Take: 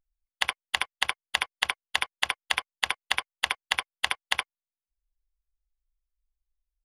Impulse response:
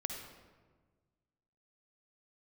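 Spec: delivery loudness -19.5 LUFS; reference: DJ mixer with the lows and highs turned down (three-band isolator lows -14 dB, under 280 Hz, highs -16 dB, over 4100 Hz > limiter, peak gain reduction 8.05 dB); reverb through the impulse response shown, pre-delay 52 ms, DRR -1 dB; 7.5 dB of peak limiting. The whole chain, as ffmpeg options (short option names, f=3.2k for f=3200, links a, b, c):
-filter_complex "[0:a]alimiter=limit=-12dB:level=0:latency=1,asplit=2[a][b];[1:a]atrim=start_sample=2205,adelay=52[c];[b][c]afir=irnorm=-1:irlink=0,volume=0.5dB[d];[a][d]amix=inputs=2:normalize=0,acrossover=split=280 4100:gain=0.2 1 0.158[e][f][g];[e][f][g]amix=inputs=3:normalize=0,volume=16.5dB,alimiter=limit=-3.5dB:level=0:latency=1"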